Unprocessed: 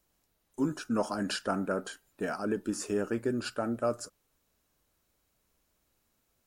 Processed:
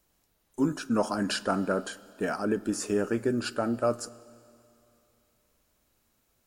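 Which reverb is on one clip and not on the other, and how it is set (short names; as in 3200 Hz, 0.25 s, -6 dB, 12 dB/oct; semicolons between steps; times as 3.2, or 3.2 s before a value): Schroeder reverb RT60 2.8 s, combs from 26 ms, DRR 19 dB; gain +3.5 dB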